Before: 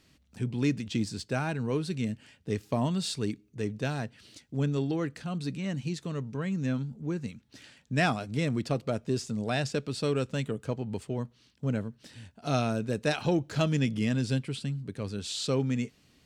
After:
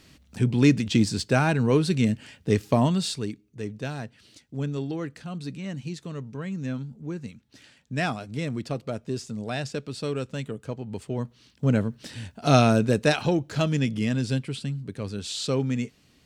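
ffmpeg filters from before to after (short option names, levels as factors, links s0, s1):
-af "volume=10,afade=t=out:st=2.63:d=0.67:silence=0.316228,afade=t=in:st=10.87:d=1.17:silence=0.281838,afade=t=out:st=12.78:d=0.56:silence=0.421697"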